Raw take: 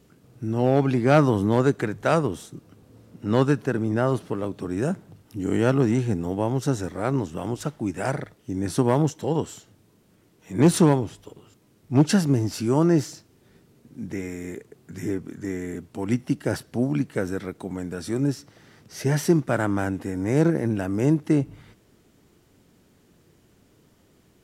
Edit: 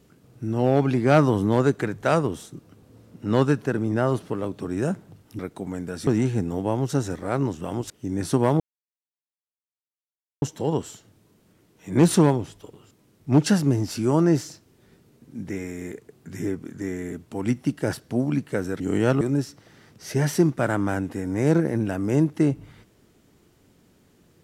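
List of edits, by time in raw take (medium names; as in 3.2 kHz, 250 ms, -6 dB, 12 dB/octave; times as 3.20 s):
5.39–5.80 s: swap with 17.43–18.11 s
7.63–8.35 s: delete
9.05 s: insert silence 1.82 s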